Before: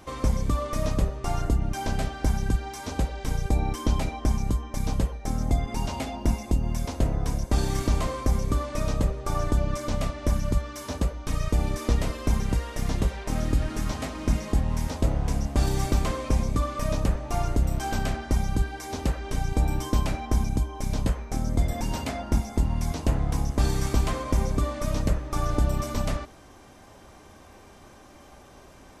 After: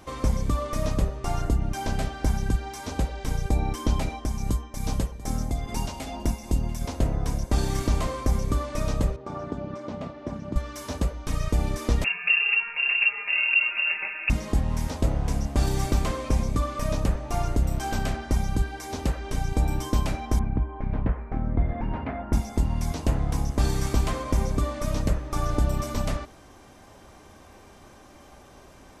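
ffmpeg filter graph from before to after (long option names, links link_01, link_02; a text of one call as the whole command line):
ffmpeg -i in.wav -filter_complex "[0:a]asettb=1/sr,asplit=3[link_01][link_02][link_03];[link_01]atrim=end=4.104[link_04];[link_02]atrim=start=4.1:end=6.81,asetpts=PTS-STARTPTS,afade=type=in:duration=0.004:curve=qsin,afade=type=out:start_time=2.706:duration=0.004:curve=qsin,tremolo=f=2.4:d=0.47,highshelf=frequency=4600:gain=5.5,aecho=1:1:690:0.133,atrim=end_sample=119511[link_05];[link_03]atrim=start=6.806[link_06];[link_04][link_05]acrossfade=duration=0.004:curve1=hsin:curve2=qsin[link_07];[link_07][link_06]acrossfade=duration=0.004:curve1=qsin:curve2=hsin,asettb=1/sr,asplit=3[link_08][link_09][link_10];[link_08]atrim=end=9.164[link_11];[link_09]atrim=start=9.16:end=10.56,asetpts=PTS-STARTPTS,afade=type=in:duration=0.004:curve=qsin,afade=type=out:start_time=1.396:duration=0.004:curve=qsin,equalizer=frequency=2100:width_type=o:width=2.1:gain=-6.5,tremolo=f=210:d=0.4,highpass=160,lowpass=2900[link_12];[link_10]atrim=start=10.556[link_13];[link_11][link_12]acrossfade=duration=0.004:curve1=hsin:curve2=qsin[link_14];[link_14][link_13]acrossfade=duration=0.004:curve1=qsin:curve2=hsin,asettb=1/sr,asplit=3[link_15][link_16][link_17];[link_15]atrim=end=12.044[link_18];[link_16]atrim=start=12.04:end=14.3,asetpts=PTS-STARTPTS,afade=type=in:duration=0.004:curve=qsin,afade=type=out:start_time=2.256:duration=0.004:curve=qsin,aecho=1:1:5:0.53,atrim=end_sample=99666,lowpass=frequency=2400:width_type=q:width=0.5098,lowpass=frequency=2400:width_type=q:width=0.6013,lowpass=frequency=2400:width_type=q:width=0.9,lowpass=frequency=2400:width_type=q:width=2.563,afreqshift=-2800[link_19];[link_17]atrim=start=14.296[link_20];[link_18][link_19]acrossfade=duration=0.004:curve1=hsin:curve2=qsin[link_21];[link_21][link_20]acrossfade=duration=0.004:curve1=qsin:curve2=hsin,asettb=1/sr,asplit=3[link_22][link_23][link_24];[link_22]atrim=end=20.394[link_25];[link_23]atrim=start=20.39:end=22.33,asetpts=PTS-STARTPTS,afade=type=in:duration=0.004:curve=qsin,afade=type=out:start_time=1.936:duration=0.004:curve=qsin,lowpass=frequency=2100:width=0.5412,lowpass=frequency=2100:width=1.3066,equalizer=frequency=550:width_type=o:width=0.26:gain=-3[link_26];[link_24]atrim=start=22.326[link_27];[link_25][link_26]acrossfade=duration=0.004:curve1=hsin:curve2=qsin[link_28];[link_28][link_27]acrossfade=duration=0.004:curve1=qsin:curve2=hsin" out.wav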